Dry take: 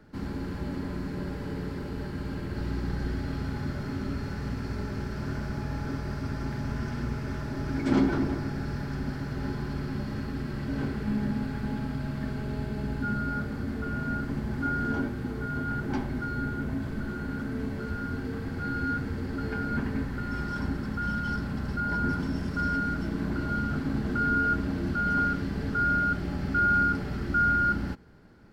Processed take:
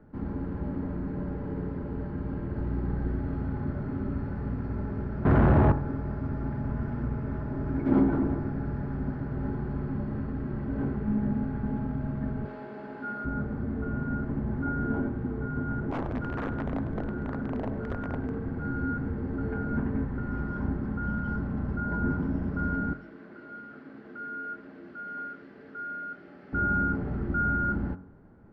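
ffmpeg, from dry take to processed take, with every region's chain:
-filter_complex "[0:a]asettb=1/sr,asplit=3[s0][s1][s2];[s0]atrim=end=5.254[s3];[s1]atrim=start=5.25:end=5.72,asetpts=PTS-STARTPTS,afade=t=in:d=0.004:c=qsin,afade=t=out:st=0.466:d=0.004:c=qsin,lowpass=4400,equalizer=f=74:w=0.77:g=14.5,asplit=2[s4][s5];[s5]highpass=f=720:p=1,volume=112,asoftclip=type=tanh:threshold=0.224[s6];[s4][s6]amix=inputs=2:normalize=0,lowpass=f=1300:p=1,volume=0.501[s7];[s2]atrim=start=5.716[s8];[s3][s7]acrossfade=d=0.004:c1=hsin:c2=qsin[s9];[s9][s8]acrossfade=d=0.004:c1=qsin:c2=hsin,asettb=1/sr,asplit=3[s10][s11][s12];[s10]atrim=end=12.454[s13];[s11]atrim=start=12.45:end=13.25,asetpts=PTS-STARTPTS,afade=t=in:d=0.004:c=qsin,afade=t=out:st=0.796:d=0.004:c=qsin,highpass=410,highshelf=f=2000:g=8[s14];[s12]atrim=start=13.246[s15];[s13][s14]acrossfade=d=0.004:c1=hsin:c2=qsin[s16];[s16][s15]acrossfade=d=0.004:c1=qsin:c2=hsin,asettb=1/sr,asplit=3[s17][s18][s19];[s17]atrim=end=15.914[s20];[s18]atrim=start=15.91:end=18.39,asetpts=PTS-STARTPTS,afade=t=in:d=0.004:c=qsin,afade=t=out:st=2.476:d=0.004:c=qsin,aeval=exprs='(mod(15.8*val(0)+1,2)-1)/15.8':c=same,asplit=8[s21][s22][s23][s24][s25][s26][s27][s28];[s22]adelay=100,afreqshift=65,volume=0.168[s29];[s23]adelay=200,afreqshift=130,volume=0.107[s30];[s24]adelay=300,afreqshift=195,volume=0.0684[s31];[s25]adelay=400,afreqshift=260,volume=0.0442[s32];[s26]adelay=500,afreqshift=325,volume=0.0282[s33];[s27]adelay=600,afreqshift=390,volume=0.018[s34];[s28]adelay=700,afreqshift=455,volume=0.0115[s35];[s21][s29][s30][s31][s32][s33][s34][s35]amix=inputs=8:normalize=0,atrim=end_sample=109368[s36];[s19]atrim=start=18.386[s37];[s20][s36]acrossfade=d=0.004:c1=hsin:c2=qsin[s38];[s38][s37]acrossfade=d=0.004:c1=qsin:c2=hsin,asettb=1/sr,asplit=3[s39][s40][s41];[s39]atrim=end=22.934[s42];[s40]atrim=start=22.93:end=26.53,asetpts=PTS-STARTPTS,afade=t=in:d=0.004:c=qsin,afade=t=out:st=3.596:d=0.004:c=qsin,highpass=640,equalizer=f=900:t=o:w=1.3:g=-13[s43];[s41]atrim=start=26.526[s44];[s42][s43]acrossfade=d=0.004:c1=hsin:c2=qsin[s45];[s45][s44]acrossfade=d=0.004:c1=qsin:c2=hsin,lowpass=1100,bandreject=f=46.27:t=h:w=4,bandreject=f=92.54:t=h:w=4,bandreject=f=138.81:t=h:w=4,bandreject=f=185.08:t=h:w=4,bandreject=f=231.35:t=h:w=4,bandreject=f=277.62:t=h:w=4,bandreject=f=323.89:t=h:w=4,bandreject=f=370.16:t=h:w=4,bandreject=f=416.43:t=h:w=4,bandreject=f=462.7:t=h:w=4,bandreject=f=508.97:t=h:w=4,bandreject=f=555.24:t=h:w=4,bandreject=f=601.51:t=h:w=4,bandreject=f=647.78:t=h:w=4,bandreject=f=694.05:t=h:w=4,bandreject=f=740.32:t=h:w=4,bandreject=f=786.59:t=h:w=4,bandreject=f=832.86:t=h:w=4,bandreject=f=879.13:t=h:w=4,bandreject=f=925.4:t=h:w=4,bandreject=f=971.67:t=h:w=4,bandreject=f=1017.94:t=h:w=4,bandreject=f=1064.21:t=h:w=4,bandreject=f=1110.48:t=h:w=4,bandreject=f=1156.75:t=h:w=4,bandreject=f=1203.02:t=h:w=4,bandreject=f=1249.29:t=h:w=4,bandreject=f=1295.56:t=h:w=4,bandreject=f=1341.83:t=h:w=4,bandreject=f=1388.1:t=h:w=4,bandreject=f=1434.37:t=h:w=4,bandreject=f=1480.64:t=h:w=4,bandreject=f=1526.91:t=h:w=4,bandreject=f=1573.18:t=h:w=4,bandreject=f=1619.45:t=h:w=4,bandreject=f=1665.72:t=h:w=4,bandreject=f=1711.99:t=h:w=4,volume=1.19"

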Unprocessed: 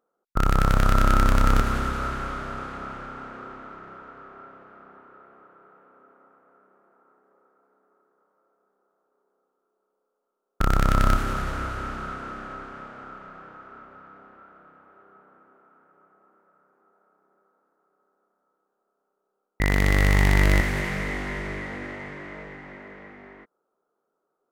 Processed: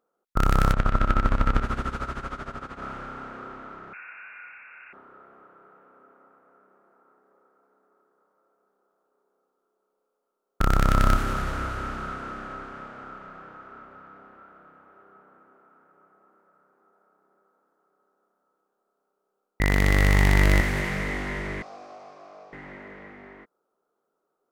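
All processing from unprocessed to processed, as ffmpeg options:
-filter_complex "[0:a]asettb=1/sr,asplit=3[s0][s1][s2];[s0]atrim=end=0.724[s3];[s1]atrim=start=0.72:end=2.82,asetpts=PTS-STARTPTS,afade=t=in:d=0.004:c=qsin,afade=t=out:st=2.096:d=0.004:c=qsin,lowpass=10000,acrossover=split=3700[s4][s5];[s5]acompressor=threshold=0.00447:ratio=4:attack=1:release=60[s6];[s4][s6]amix=inputs=2:normalize=0,tremolo=f=13:d=0.81[s7];[s2]atrim=start=2.816[s8];[s3][s7]acrossfade=d=0.004:c1=hsin:c2=qsin[s9];[s9][s8]acrossfade=d=0.004:c1=qsin:c2=hsin,asettb=1/sr,asplit=3[s10][s11][s12];[s10]atrim=end=3.934[s13];[s11]atrim=start=3.93:end=4.93,asetpts=PTS-STARTPTS,afade=t=in:d=0.004:c=qsin,afade=t=out:st=0.996:d=0.004:c=qsin,aeval=exprs='val(0)+0.5*0.00282*sgn(val(0))':c=same,asubboost=boost=7:cutoff=120,lowpass=f=2400:t=q:w=0.5098,lowpass=f=2400:t=q:w=0.6013,lowpass=f=2400:t=q:w=0.9,lowpass=f=2400:t=q:w=2.563,afreqshift=-2800[s14];[s12]atrim=start=4.926[s15];[s13][s14]acrossfade=d=0.004:c1=hsin:c2=qsin[s16];[s16][s15]acrossfade=d=0.004:c1=qsin:c2=hsin,asettb=1/sr,asplit=3[s17][s18][s19];[s17]atrim=end=21.624[s20];[s18]atrim=start=21.62:end=22.53,asetpts=PTS-STARTPTS,afade=t=in:d=0.004:c=qsin,afade=t=out:st=0.906:d=0.004:c=qsin,highshelf=f=3700:t=q:w=3:g=12.5,acontrast=52,asplit=3[s21][s22][s23];[s21]bandpass=f=730:t=q:w=8,volume=1[s24];[s22]bandpass=f=1090:t=q:w=8,volume=0.501[s25];[s23]bandpass=f=2440:t=q:w=8,volume=0.355[s26];[s24][s25][s26]amix=inputs=3:normalize=0[s27];[s19]atrim=start=22.526[s28];[s20][s27]acrossfade=d=0.004:c1=hsin:c2=qsin[s29];[s29][s28]acrossfade=d=0.004:c1=qsin:c2=hsin"

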